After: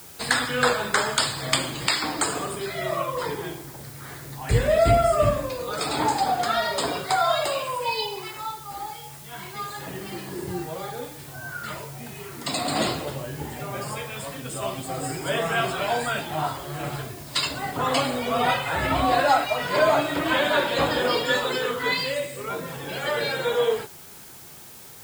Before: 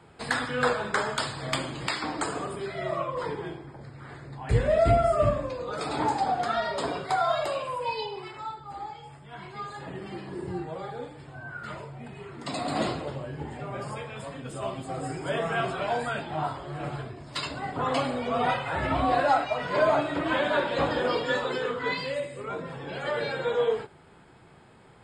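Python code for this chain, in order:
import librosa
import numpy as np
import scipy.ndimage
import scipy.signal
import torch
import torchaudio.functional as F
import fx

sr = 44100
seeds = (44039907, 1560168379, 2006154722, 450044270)

p1 = fx.quant_dither(x, sr, seeds[0], bits=8, dither='triangular')
p2 = x + (p1 * librosa.db_to_amplitude(-5.0))
p3 = fx.high_shelf(p2, sr, hz=2900.0, db=10.5)
y = p3 * librosa.db_to_amplitude(-1.5)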